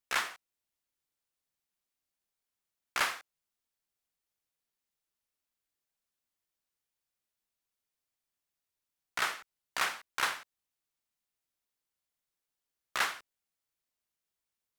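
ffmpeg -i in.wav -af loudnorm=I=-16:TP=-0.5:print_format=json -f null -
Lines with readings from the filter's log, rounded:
"input_i" : "-34.1",
"input_tp" : "-15.3",
"input_lra" : "4.0",
"input_thresh" : "-45.1",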